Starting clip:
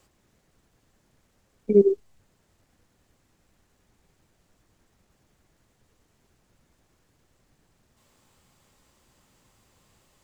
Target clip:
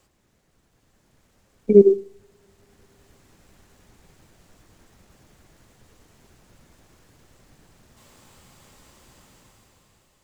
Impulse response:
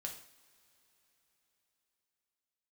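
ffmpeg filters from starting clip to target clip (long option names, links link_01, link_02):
-filter_complex "[0:a]dynaudnorm=framelen=210:gausssize=9:maxgain=11dB,asplit=2[link_01][link_02];[1:a]atrim=start_sample=2205,adelay=94[link_03];[link_02][link_03]afir=irnorm=-1:irlink=0,volume=-18dB[link_04];[link_01][link_04]amix=inputs=2:normalize=0"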